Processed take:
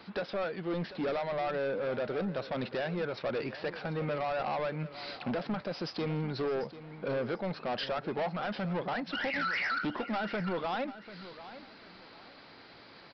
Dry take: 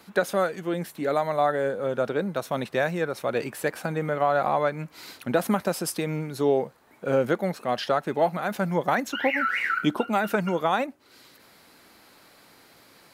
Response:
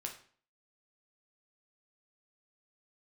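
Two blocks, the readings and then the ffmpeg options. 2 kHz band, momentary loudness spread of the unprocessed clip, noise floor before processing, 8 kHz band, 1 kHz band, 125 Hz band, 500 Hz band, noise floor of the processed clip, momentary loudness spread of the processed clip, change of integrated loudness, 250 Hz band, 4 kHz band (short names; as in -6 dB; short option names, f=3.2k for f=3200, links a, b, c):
-7.0 dB, 6 LU, -55 dBFS, under -25 dB, -9.5 dB, -5.5 dB, -8.5 dB, -54 dBFS, 16 LU, -8.0 dB, -7.0 dB, -4.0 dB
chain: -af "alimiter=limit=-17.5dB:level=0:latency=1:release=429,aresample=11025,asoftclip=type=tanh:threshold=-30.5dB,aresample=44100,aecho=1:1:742|1484|2226:0.188|0.0509|0.0137,volume=1.5dB"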